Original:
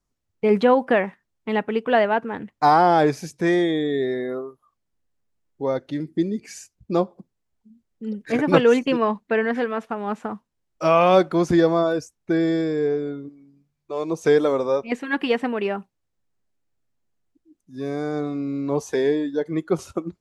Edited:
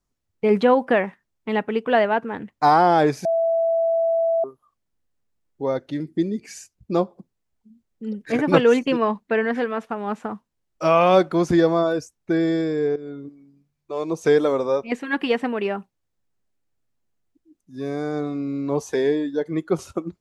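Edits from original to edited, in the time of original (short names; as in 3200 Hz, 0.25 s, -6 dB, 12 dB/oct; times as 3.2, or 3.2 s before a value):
3.25–4.44 bleep 662 Hz -17 dBFS
12.96–13.25 fade in, from -13.5 dB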